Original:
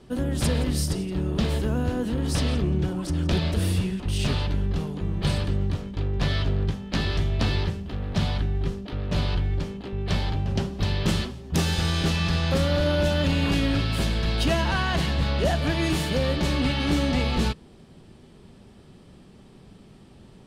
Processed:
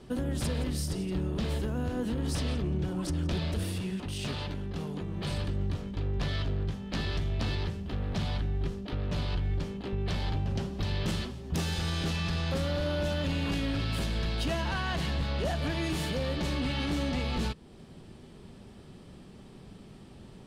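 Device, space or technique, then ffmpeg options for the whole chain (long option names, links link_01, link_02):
soft clipper into limiter: -filter_complex "[0:a]asoftclip=type=tanh:threshold=-14.5dB,alimiter=limit=-23.5dB:level=0:latency=1:release=334,asettb=1/sr,asplit=3[link_01][link_02][link_03];[link_01]atrim=end=3.634[link_04];[link_02]atrim=start=3.63:end=5.31,asetpts=PTS-STARTPTS,afade=type=in:duration=0.004:curve=qsin,afade=type=out:start_time=1.676:duration=0.004:curve=qsin,highpass=frequency=130:poles=1[link_05];[link_03]atrim=start=5.306[link_06];[link_04][link_05]acrossfade=duration=0.004:curve1=hsin:curve2=qsin[link_07];[link_07][link_06]acrossfade=duration=0.004:curve1=qsin:curve2=hsin"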